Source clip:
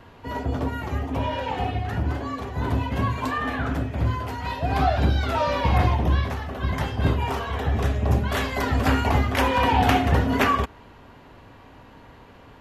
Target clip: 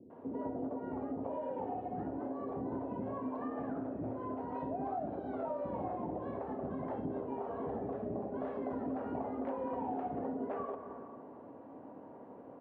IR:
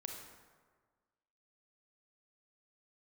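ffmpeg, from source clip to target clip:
-filter_complex "[0:a]asuperpass=centerf=410:order=4:qfactor=0.89,acrossover=split=390[link_01][link_02];[link_02]adelay=100[link_03];[link_01][link_03]amix=inputs=2:normalize=0,asplit=2[link_04][link_05];[1:a]atrim=start_sample=2205[link_06];[link_05][link_06]afir=irnorm=-1:irlink=0,volume=-3dB[link_07];[link_04][link_07]amix=inputs=2:normalize=0,acompressor=threshold=-36dB:ratio=6"

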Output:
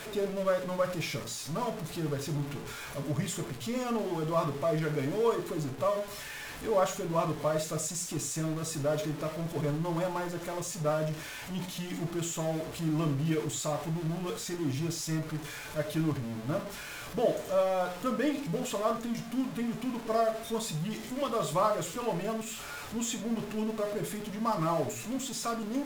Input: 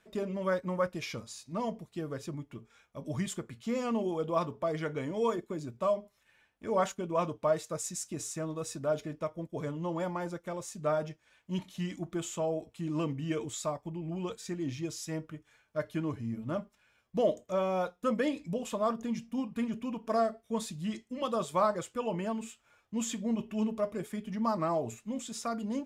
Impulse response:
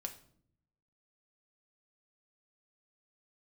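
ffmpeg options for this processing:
-filter_complex "[0:a]aeval=exprs='val(0)+0.5*0.0168*sgn(val(0))':channel_layout=same[link_01];[1:a]atrim=start_sample=2205,atrim=end_sample=3528,asetrate=32193,aresample=44100[link_02];[link_01][link_02]afir=irnorm=-1:irlink=0"

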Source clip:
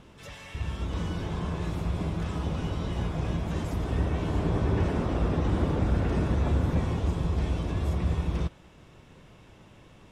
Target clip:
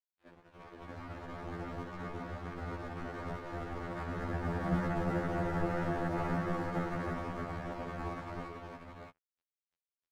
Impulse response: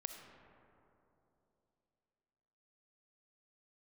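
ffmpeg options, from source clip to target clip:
-filter_complex "[0:a]aecho=1:1:69|275|277|622:0.251|0.237|0.447|0.708,acrusher=samples=35:mix=1:aa=0.000001,highpass=frequency=270:width_type=q:width=0.5412,highpass=frequency=270:width_type=q:width=1.307,lowpass=frequency=2100:width_type=q:width=0.5176,lowpass=frequency=2100:width_type=q:width=0.7071,lowpass=frequency=2100:width_type=q:width=1.932,afreqshift=-210,asettb=1/sr,asplit=3[link_01][link_02][link_03];[link_01]atrim=end=4.634[link_04];[link_02]atrim=start=4.63:end=7.08,asetpts=PTS-STARTPTS,afade=type=in:duration=0.004:curve=qsin,afade=type=out:start_time=2.446:duration=0.004:curve=qsin,aecho=1:1:6:0.46,atrim=end_sample=108045[link_05];[link_03]atrim=start=7.076[link_06];[link_04][link_05]acrossfade=duration=0.004:curve1=hsin:curve2=qsin[link_07];[link_07][link_06]acrossfade=duration=0.004:curve1=qsin:curve2=hsin,aeval=exprs='sgn(val(0))*max(abs(val(0))-0.00562,0)':channel_layout=same,afftfilt=real='re*2*eq(mod(b,4),0)':imag='im*2*eq(mod(b,4),0)':win_size=2048:overlap=0.75"

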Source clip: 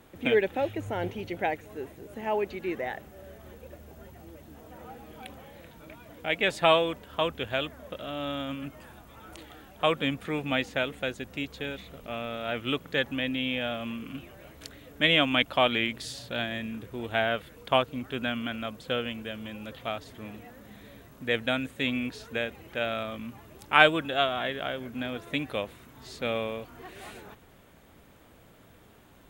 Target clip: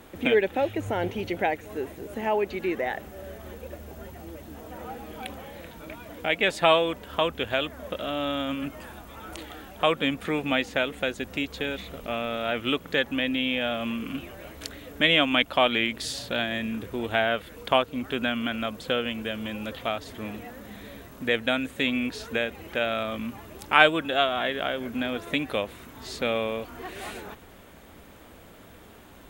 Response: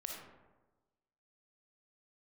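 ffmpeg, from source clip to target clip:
-filter_complex "[0:a]equalizer=frequency=130:width=3.2:gain=-7.5,asplit=2[link_01][link_02];[link_02]acompressor=threshold=-34dB:ratio=6,volume=2dB[link_03];[link_01][link_03]amix=inputs=2:normalize=0"

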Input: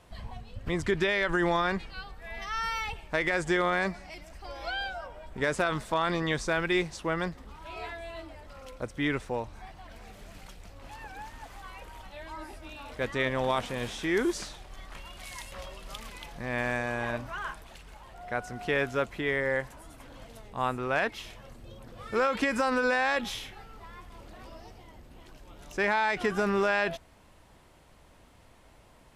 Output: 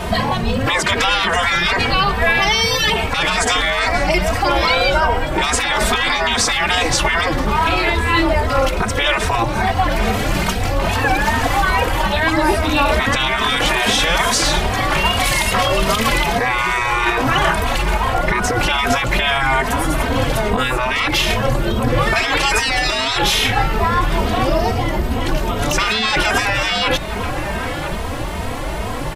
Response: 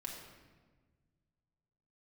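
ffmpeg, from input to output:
-filter_complex "[0:a]afftfilt=real='re*lt(hypot(re,im),0.0562)':imag='im*lt(hypot(re,im),0.0562)':win_size=1024:overlap=0.75,equalizer=frequency=7600:width_type=o:width=2.2:gain=-4.5,asplit=2[link_01][link_02];[link_02]adelay=991.3,volume=-15dB,highshelf=frequency=4000:gain=-22.3[link_03];[link_01][link_03]amix=inputs=2:normalize=0,asplit=2[link_04][link_05];[link_05]acompressor=threshold=-52dB:ratio=6,volume=1dB[link_06];[link_04][link_06]amix=inputs=2:normalize=0,alimiter=level_in=33dB:limit=-1dB:release=50:level=0:latency=1,asplit=2[link_07][link_08];[link_08]adelay=2.9,afreqshift=2.4[link_09];[link_07][link_09]amix=inputs=2:normalize=1,volume=-2dB"

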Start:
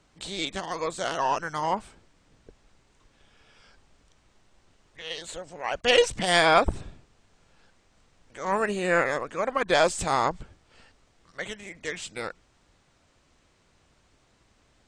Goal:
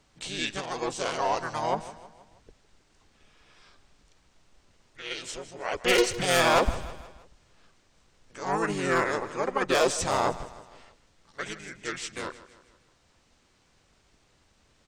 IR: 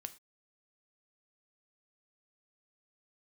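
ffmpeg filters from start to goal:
-filter_complex "[0:a]highshelf=frequency=4100:gain=5,aeval=exprs='0.237*(abs(mod(val(0)/0.237+3,4)-2)-1)':channel_layout=same,asplit=2[link_01][link_02];[link_02]asetrate=33038,aresample=44100,atempo=1.33484,volume=-1dB[link_03];[link_01][link_03]amix=inputs=2:normalize=0,asplit=2[link_04][link_05];[link_05]aecho=0:1:159|318|477|636:0.158|0.0777|0.0381|0.0186[link_06];[link_04][link_06]amix=inputs=2:normalize=0,volume=-4dB"

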